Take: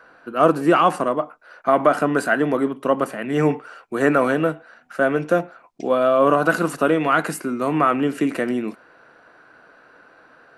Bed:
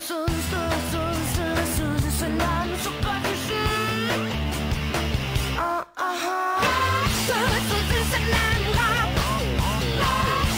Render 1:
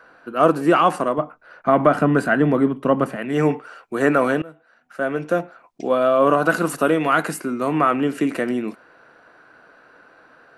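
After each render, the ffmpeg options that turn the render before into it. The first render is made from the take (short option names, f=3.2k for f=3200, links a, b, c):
-filter_complex "[0:a]asettb=1/sr,asplit=3[a][b][c];[a]atrim=end=1.184[d];[b]atrim=start=1.18:end=3.16,asetpts=PTS-STARTPTS,afade=t=in:d=0.004:c=qsin,afade=t=out:st=1.976:d=0.004:c=qsin,bass=f=250:g=10,treble=f=4k:g=-6[e];[c]atrim=start=3.156[f];[d][e]acrossfade=d=0.004:c1=hsin:c2=qsin[g];[g][f]acrossfade=d=0.004:c1=qsin:c2=hsin,asettb=1/sr,asplit=3[h][i][j];[h]atrim=end=6.664[k];[i]atrim=start=6.66:end=7.25,asetpts=PTS-STARTPTS,afade=t=in:d=0.004:c=qsin,afade=t=out:st=0.586:d=0.004:c=qsin,highshelf=f=10k:g=10.5[l];[j]atrim=start=7.246[m];[k][l]acrossfade=d=0.004:c1=hsin:c2=qsin[n];[n][m]acrossfade=d=0.004:c1=qsin:c2=hsin,asplit=2[o][p];[o]atrim=end=4.42,asetpts=PTS-STARTPTS,afade=t=out:st=4.416:d=0.004:c=hsin:silence=0.0668344[q];[p]atrim=start=4.42,asetpts=PTS-STARTPTS,afade=t=in:d=1.61:c=qsin:silence=0.0668344[r];[q][r]concat=n=2:v=0:a=1"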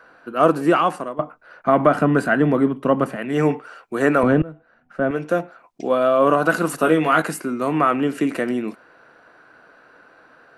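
-filter_complex "[0:a]asettb=1/sr,asplit=3[a][b][c];[a]atrim=end=4.234[d];[b]atrim=start=4.23:end=5.11,asetpts=PTS-STARTPTS,afade=t=in:d=0.004:c=qsin,afade=t=out:st=0.876:d=0.004:c=qsin,aemphasis=mode=reproduction:type=riaa[e];[c]atrim=start=5.106[f];[d][e]acrossfade=d=0.004:c1=hsin:c2=qsin[g];[g][f]acrossfade=d=0.004:c1=qsin:c2=hsin,asettb=1/sr,asplit=3[h][i][j];[h]atrim=end=6.814[k];[i]atrim=start=6.81:end=7.22,asetpts=PTS-STARTPTS,afade=t=in:d=0.004:c=qsin,afade=t=out:st=0.406:d=0.004:c=qsin,asplit=2[l][m];[m]adelay=19,volume=-6.5dB[n];[l][n]amix=inputs=2:normalize=0,atrim=end_sample=18081[o];[j]atrim=start=7.216[p];[k][o]acrossfade=d=0.004:c1=hsin:c2=qsin[q];[q][p]acrossfade=d=0.004:c1=qsin:c2=hsin,asplit=2[r][s];[r]atrim=end=1.19,asetpts=PTS-STARTPTS,afade=t=out:st=0.67:d=0.52:silence=0.237137[t];[s]atrim=start=1.19,asetpts=PTS-STARTPTS,afade=t=in:d=0.004:c=hsin:silence=0.237137[u];[t][u]concat=n=2:v=0:a=1"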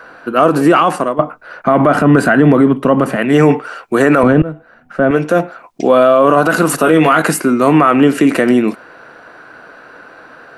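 -af "alimiter=level_in=12.5dB:limit=-1dB:release=50:level=0:latency=1"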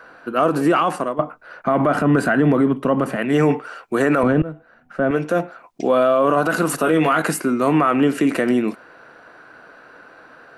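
-af "volume=-7dB"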